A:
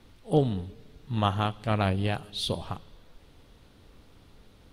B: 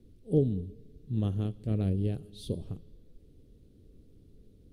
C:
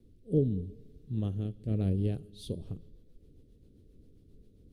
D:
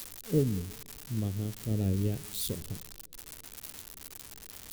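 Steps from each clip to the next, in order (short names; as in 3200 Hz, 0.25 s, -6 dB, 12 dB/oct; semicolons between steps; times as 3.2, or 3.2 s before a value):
EQ curve 430 Hz 0 dB, 890 Hz -27 dB, 10000 Hz -9 dB; gain -1 dB
rotary speaker horn 0.85 Hz, later 7.5 Hz, at 2.01
switching spikes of -26.5 dBFS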